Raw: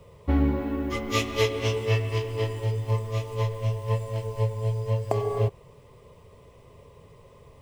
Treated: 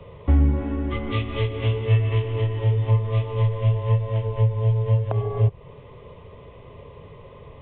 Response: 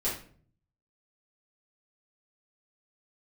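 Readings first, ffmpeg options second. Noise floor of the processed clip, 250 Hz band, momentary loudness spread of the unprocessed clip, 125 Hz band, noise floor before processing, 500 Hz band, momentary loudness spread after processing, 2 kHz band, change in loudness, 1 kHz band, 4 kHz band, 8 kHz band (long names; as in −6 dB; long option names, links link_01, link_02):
−45 dBFS, +0.5 dB, 5 LU, +7.0 dB, −53 dBFS, −0.5 dB, 6 LU, −2.0 dB, +4.5 dB, −0.5 dB, can't be measured, below −35 dB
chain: -filter_complex "[0:a]acrossover=split=160[link_01][link_02];[link_02]acompressor=threshold=-37dB:ratio=4[link_03];[link_01][link_03]amix=inputs=2:normalize=0,aresample=8000,aresample=44100,volume=8dB"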